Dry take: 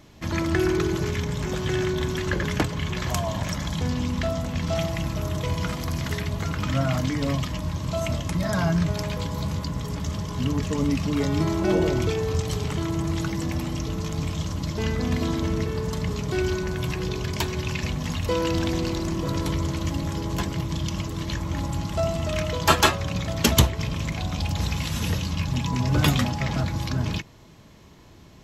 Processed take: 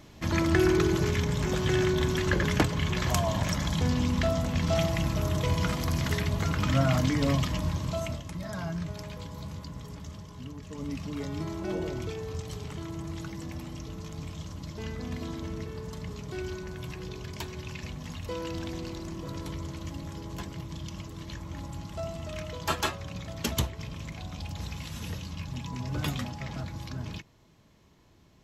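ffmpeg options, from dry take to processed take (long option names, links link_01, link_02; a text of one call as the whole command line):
ffmpeg -i in.wav -af "volume=6.5dB,afade=type=out:start_time=7.65:duration=0.58:silence=0.281838,afade=type=out:start_time=9.85:duration=0.76:silence=0.473151,afade=type=in:start_time=10.61:duration=0.34:silence=0.446684" out.wav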